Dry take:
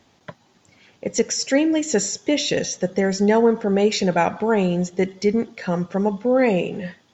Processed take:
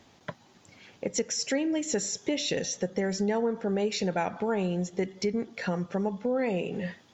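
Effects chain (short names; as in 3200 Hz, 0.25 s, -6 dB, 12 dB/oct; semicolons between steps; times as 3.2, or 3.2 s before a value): compressor 2.5:1, threshold -30 dBFS, peak gain reduction 12.5 dB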